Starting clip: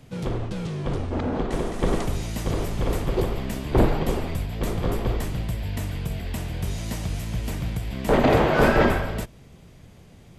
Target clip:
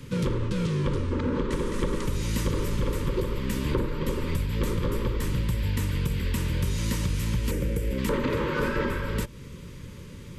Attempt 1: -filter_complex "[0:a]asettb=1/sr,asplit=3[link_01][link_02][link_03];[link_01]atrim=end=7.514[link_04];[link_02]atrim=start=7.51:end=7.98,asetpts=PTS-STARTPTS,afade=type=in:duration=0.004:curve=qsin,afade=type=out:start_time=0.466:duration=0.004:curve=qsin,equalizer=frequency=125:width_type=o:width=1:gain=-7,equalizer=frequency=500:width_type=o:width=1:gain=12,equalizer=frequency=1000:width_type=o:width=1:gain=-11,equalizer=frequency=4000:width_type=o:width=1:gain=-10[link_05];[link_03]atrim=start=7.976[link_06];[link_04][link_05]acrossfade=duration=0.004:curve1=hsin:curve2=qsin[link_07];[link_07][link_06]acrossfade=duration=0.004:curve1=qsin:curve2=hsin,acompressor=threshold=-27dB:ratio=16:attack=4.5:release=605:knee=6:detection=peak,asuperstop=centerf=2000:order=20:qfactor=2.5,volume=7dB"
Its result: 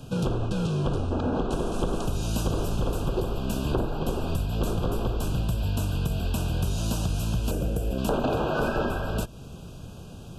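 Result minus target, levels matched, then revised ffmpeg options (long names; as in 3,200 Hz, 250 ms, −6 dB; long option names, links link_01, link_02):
2,000 Hz band −3.0 dB
-filter_complex "[0:a]asettb=1/sr,asplit=3[link_01][link_02][link_03];[link_01]atrim=end=7.514[link_04];[link_02]atrim=start=7.51:end=7.98,asetpts=PTS-STARTPTS,afade=type=in:duration=0.004:curve=qsin,afade=type=out:start_time=0.466:duration=0.004:curve=qsin,equalizer=frequency=125:width_type=o:width=1:gain=-7,equalizer=frequency=500:width_type=o:width=1:gain=12,equalizer=frequency=1000:width_type=o:width=1:gain=-11,equalizer=frequency=4000:width_type=o:width=1:gain=-10[link_05];[link_03]atrim=start=7.976[link_06];[link_04][link_05]acrossfade=duration=0.004:curve1=hsin:curve2=qsin[link_07];[link_07][link_06]acrossfade=duration=0.004:curve1=qsin:curve2=hsin,acompressor=threshold=-27dB:ratio=16:attack=4.5:release=605:knee=6:detection=peak,asuperstop=centerf=720:order=20:qfactor=2.5,volume=7dB"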